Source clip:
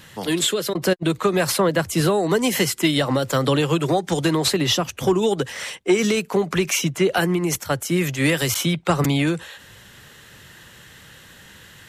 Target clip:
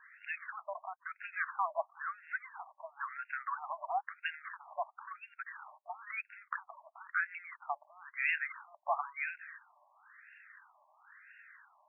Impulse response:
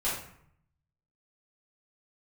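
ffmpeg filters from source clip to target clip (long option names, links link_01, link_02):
-af "afftfilt=real='re*between(b*sr/1024,800*pow(2000/800,0.5+0.5*sin(2*PI*0.99*pts/sr))/1.41,800*pow(2000/800,0.5+0.5*sin(2*PI*0.99*pts/sr))*1.41)':imag='im*between(b*sr/1024,800*pow(2000/800,0.5+0.5*sin(2*PI*0.99*pts/sr))/1.41,800*pow(2000/800,0.5+0.5*sin(2*PI*0.99*pts/sr))*1.41)':win_size=1024:overlap=0.75,volume=-7dB"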